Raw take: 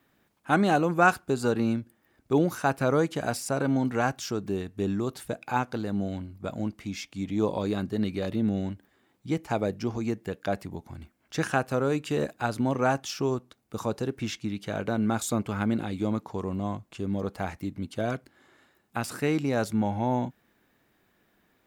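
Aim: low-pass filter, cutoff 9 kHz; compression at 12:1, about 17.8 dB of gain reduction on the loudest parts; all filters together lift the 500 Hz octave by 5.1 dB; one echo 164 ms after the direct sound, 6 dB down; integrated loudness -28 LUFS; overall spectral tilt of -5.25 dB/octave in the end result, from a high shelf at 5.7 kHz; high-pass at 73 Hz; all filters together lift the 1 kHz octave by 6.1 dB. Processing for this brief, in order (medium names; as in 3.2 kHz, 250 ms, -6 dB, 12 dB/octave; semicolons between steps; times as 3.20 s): high-pass 73 Hz; low-pass 9 kHz; peaking EQ 500 Hz +4.5 dB; peaking EQ 1 kHz +6.5 dB; treble shelf 5.7 kHz +6 dB; compression 12:1, threshold -29 dBFS; delay 164 ms -6 dB; trim +6.5 dB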